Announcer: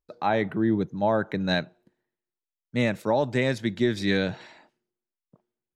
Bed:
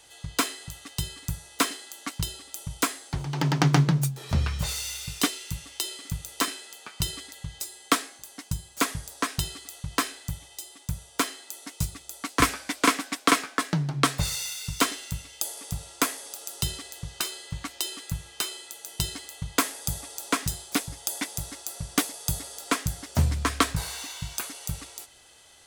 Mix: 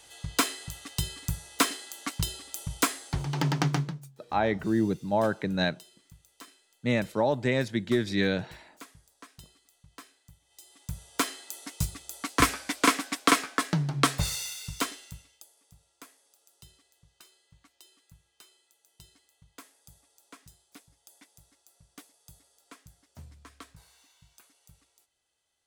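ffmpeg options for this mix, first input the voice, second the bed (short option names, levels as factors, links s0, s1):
-filter_complex "[0:a]adelay=4100,volume=0.794[s0];[1:a]volume=11.9,afade=t=out:st=3.3:d=0.71:silence=0.0749894,afade=t=in:st=10.44:d=0.84:silence=0.0841395,afade=t=out:st=14.14:d=1.32:silence=0.0595662[s1];[s0][s1]amix=inputs=2:normalize=0"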